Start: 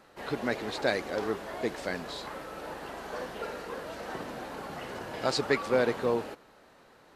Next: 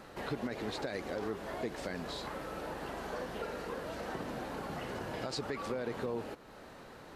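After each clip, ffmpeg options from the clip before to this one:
-af "alimiter=limit=0.0794:level=0:latency=1:release=56,acompressor=threshold=0.00316:ratio=2,lowshelf=f=270:g=6.5,volume=1.78"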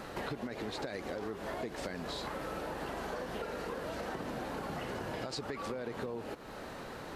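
-af "acompressor=threshold=0.00708:ratio=6,volume=2.24"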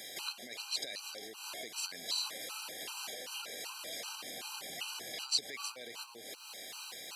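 -af "aexciter=amount=4.7:drive=7.1:freq=2300,highpass=f=910:p=1,afftfilt=real='re*gt(sin(2*PI*2.6*pts/sr)*(1-2*mod(floor(b*sr/1024/790),2)),0)':imag='im*gt(sin(2*PI*2.6*pts/sr)*(1-2*mod(floor(b*sr/1024/790),2)),0)':win_size=1024:overlap=0.75,volume=0.708"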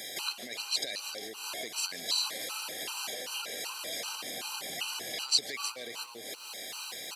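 -af "aecho=1:1:145|290|435:0.0668|0.0321|0.0154,volume=1.88"

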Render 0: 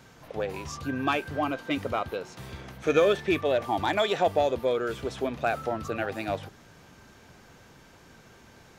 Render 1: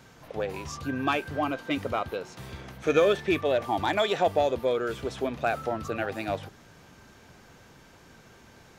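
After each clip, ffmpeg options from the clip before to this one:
-af anull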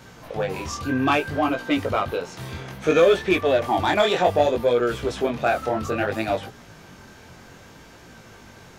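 -filter_complex "[0:a]flanger=delay=16.5:depth=7.4:speed=0.62,asplit=2[s0][s1];[s1]asoftclip=type=tanh:threshold=0.0422,volume=0.596[s2];[s0][s2]amix=inputs=2:normalize=0,volume=2"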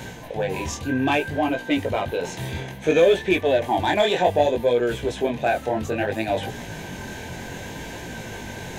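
-af "superequalizer=10b=0.251:14b=0.562,areverse,acompressor=mode=upward:threshold=0.0794:ratio=2.5,areverse"

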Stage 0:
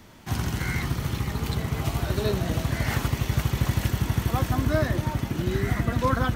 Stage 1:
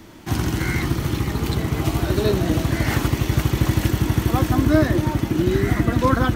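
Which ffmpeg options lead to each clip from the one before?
-af "equalizer=f=320:t=o:w=0.38:g=10.5,volume=1.68"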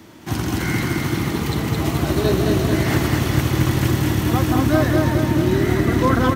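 -af "highpass=82,aecho=1:1:216|432|648|864|1080|1296|1512|1728|1944:0.708|0.418|0.246|0.145|0.0858|0.0506|0.0299|0.0176|0.0104"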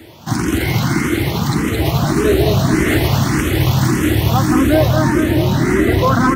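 -filter_complex "[0:a]apsyclip=3.76,asplit=2[s0][s1];[s1]afreqshift=1.7[s2];[s0][s2]amix=inputs=2:normalize=1,volume=0.668"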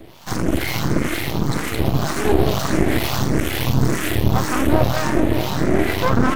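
-filter_complex "[0:a]acrossover=split=610[s0][s1];[s0]aeval=exprs='val(0)*(1-0.7/2+0.7/2*cos(2*PI*2.1*n/s))':c=same[s2];[s1]aeval=exprs='val(0)*(1-0.7/2-0.7/2*cos(2*PI*2.1*n/s))':c=same[s3];[s2][s3]amix=inputs=2:normalize=0,aeval=exprs='max(val(0),0)':c=same,volume=1.41"

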